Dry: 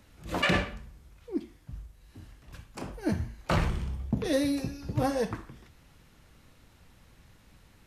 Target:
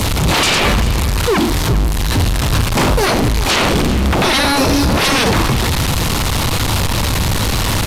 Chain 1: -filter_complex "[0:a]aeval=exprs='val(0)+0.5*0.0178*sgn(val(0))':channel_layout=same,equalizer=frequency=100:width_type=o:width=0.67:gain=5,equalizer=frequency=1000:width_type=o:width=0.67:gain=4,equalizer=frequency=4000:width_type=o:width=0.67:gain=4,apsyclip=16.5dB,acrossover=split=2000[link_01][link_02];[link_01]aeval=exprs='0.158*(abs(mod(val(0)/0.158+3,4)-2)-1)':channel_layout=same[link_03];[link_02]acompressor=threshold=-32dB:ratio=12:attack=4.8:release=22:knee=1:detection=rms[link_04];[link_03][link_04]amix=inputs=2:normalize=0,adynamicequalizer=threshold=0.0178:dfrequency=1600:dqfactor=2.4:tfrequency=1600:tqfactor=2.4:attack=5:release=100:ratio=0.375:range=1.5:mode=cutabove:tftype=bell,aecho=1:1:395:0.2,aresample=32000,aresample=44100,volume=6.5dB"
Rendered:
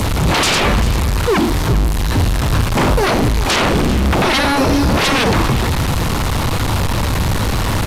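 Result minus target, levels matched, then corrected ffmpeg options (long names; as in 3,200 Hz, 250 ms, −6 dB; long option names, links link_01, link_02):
downward compressor: peak gain reduction +7 dB
-filter_complex "[0:a]aeval=exprs='val(0)+0.5*0.0178*sgn(val(0))':channel_layout=same,equalizer=frequency=100:width_type=o:width=0.67:gain=5,equalizer=frequency=1000:width_type=o:width=0.67:gain=4,equalizer=frequency=4000:width_type=o:width=0.67:gain=4,apsyclip=16.5dB,acrossover=split=2000[link_01][link_02];[link_01]aeval=exprs='0.158*(abs(mod(val(0)/0.158+3,4)-2)-1)':channel_layout=same[link_03];[link_02]acompressor=threshold=-24.5dB:ratio=12:attack=4.8:release=22:knee=1:detection=rms[link_04];[link_03][link_04]amix=inputs=2:normalize=0,adynamicequalizer=threshold=0.0178:dfrequency=1600:dqfactor=2.4:tfrequency=1600:tqfactor=2.4:attack=5:release=100:ratio=0.375:range=1.5:mode=cutabove:tftype=bell,aecho=1:1:395:0.2,aresample=32000,aresample=44100,volume=6.5dB"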